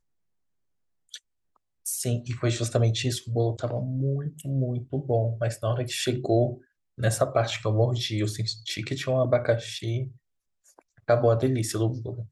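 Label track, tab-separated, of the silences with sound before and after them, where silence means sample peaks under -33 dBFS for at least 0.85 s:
10.080000	11.090000	silence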